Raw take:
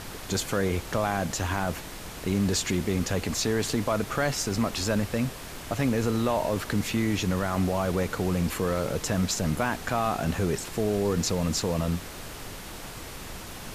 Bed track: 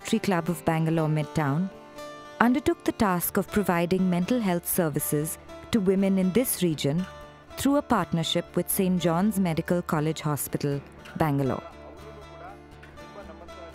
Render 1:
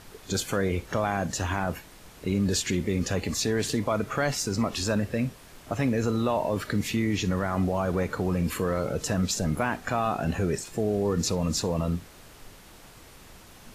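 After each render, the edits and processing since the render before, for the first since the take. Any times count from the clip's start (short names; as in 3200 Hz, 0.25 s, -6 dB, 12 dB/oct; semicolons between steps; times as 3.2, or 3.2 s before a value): noise print and reduce 10 dB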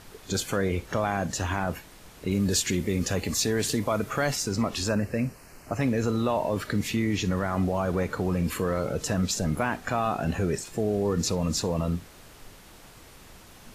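2.31–4.36 high shelf 8100 Hz +8 dB; 4.89–5.81 Butterworth band-stop 3500 Hz, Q 2.4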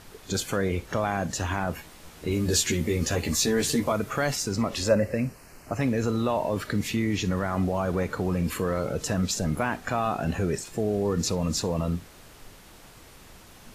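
1.77–3.92 doubler 13 ms -3 dB; 4.69–5.13 small resonant body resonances 550/2000 Hz, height 11 dB -> 15 dB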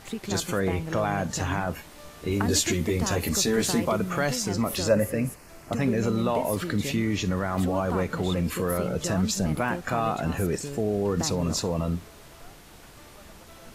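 add bed track -9.5 dB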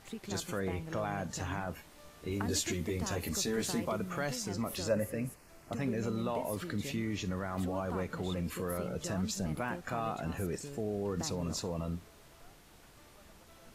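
gain -9.5 dB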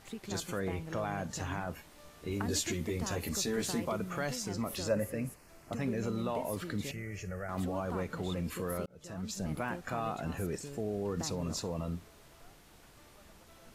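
6.91–7.49 fixed phaser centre 1000 Hz, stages 6; 8.86–9.53 fade in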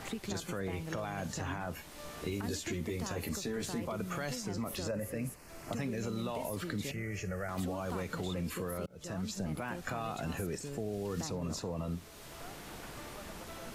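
limiter -27.5 dBFS, peak gain reduction 8.5 dB; three-band squash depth 70%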